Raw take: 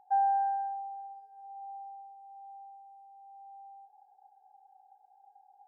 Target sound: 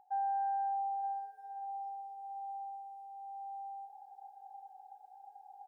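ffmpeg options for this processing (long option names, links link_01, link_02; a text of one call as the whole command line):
ffmpeg -i in.wav -af "areverse,acompressor=threshold=-39dB:ratio=8,areverse,aecho=1:1:921:0.237,volume=6dB" out.wav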